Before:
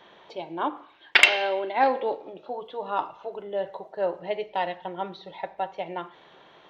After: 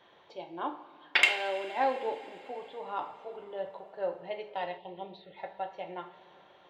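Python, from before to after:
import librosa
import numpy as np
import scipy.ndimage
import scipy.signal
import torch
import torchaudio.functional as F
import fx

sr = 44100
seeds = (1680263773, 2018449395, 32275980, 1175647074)

y = fx.rev_double_slope(x, sr, seeds[0], early_s=0.36, late_s=4.5, knee_db=-18, drr_db=5.0)
y = fx.env_phaser(y, sr, low_hz=570.0, high_hz=1500.0, full_db=-29.0, at=(4.77, 5.36), fade=0.02)
y = F.gain(torch.from_numpy(y), -8.5).numpy()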